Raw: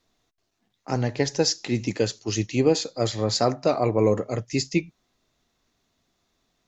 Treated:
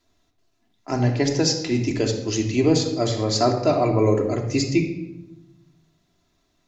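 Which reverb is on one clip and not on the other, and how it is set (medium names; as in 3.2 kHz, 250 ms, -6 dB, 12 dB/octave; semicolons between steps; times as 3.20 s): simulated room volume 4000 m³, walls furnished, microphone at 3 m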